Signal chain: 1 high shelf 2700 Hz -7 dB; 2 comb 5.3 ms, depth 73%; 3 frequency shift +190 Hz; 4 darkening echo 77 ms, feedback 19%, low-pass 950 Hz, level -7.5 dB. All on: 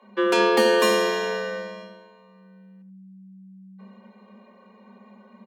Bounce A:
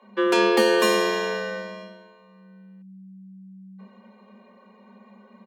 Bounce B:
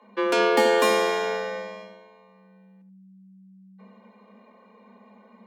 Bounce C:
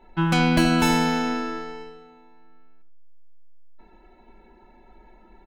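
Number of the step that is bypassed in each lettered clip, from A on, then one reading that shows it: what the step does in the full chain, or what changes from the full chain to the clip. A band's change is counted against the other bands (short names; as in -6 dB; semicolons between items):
4, echo-to-direct -12.0 dB to none; 2, 1 kHz band +2.5 dB; 3, 500 Hz band -9.5 dB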